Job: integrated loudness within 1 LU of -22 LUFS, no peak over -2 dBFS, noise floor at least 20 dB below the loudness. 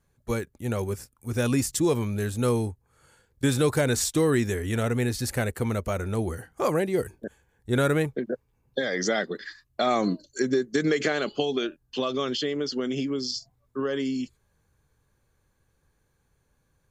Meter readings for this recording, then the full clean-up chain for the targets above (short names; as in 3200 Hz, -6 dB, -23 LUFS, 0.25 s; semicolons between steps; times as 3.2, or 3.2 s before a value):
loudness -27.0 LUFS; peak -11.5 dBFS; loudness target -22.0 LUFS
-> gain +5 dB